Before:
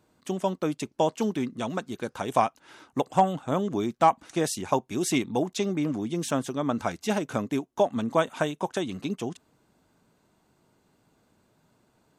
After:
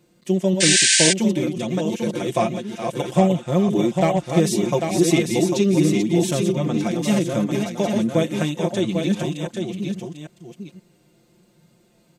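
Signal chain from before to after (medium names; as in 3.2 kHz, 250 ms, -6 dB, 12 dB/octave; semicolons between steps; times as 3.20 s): chunks repeated in reverse 526 ms, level -6.5 dB; high-order bell 1.1 kHz -8 dB 1.3 oct; delay 797 ms -6.5 dB; painted sound noise, 0.60–1.13 s, 1.5–9.3 kHz -23 dBFS; comb 5.7 ms, depth 79%; harmonic-percussive split harmonic +7 dB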